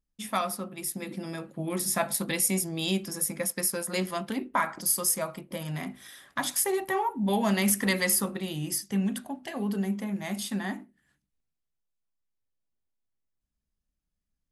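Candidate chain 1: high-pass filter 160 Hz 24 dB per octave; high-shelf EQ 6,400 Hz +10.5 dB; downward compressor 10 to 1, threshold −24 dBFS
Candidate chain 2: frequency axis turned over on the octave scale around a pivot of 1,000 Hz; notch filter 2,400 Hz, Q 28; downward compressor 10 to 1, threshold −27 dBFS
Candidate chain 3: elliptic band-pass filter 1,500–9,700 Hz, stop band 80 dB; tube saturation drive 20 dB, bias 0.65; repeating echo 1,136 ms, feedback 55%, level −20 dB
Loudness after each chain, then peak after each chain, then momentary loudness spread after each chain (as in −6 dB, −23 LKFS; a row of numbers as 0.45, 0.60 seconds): −29.5, −34.0, −36.5 LKFS; −10.5, −18.5, −16.0 dBFS; 10, 7, 16 LU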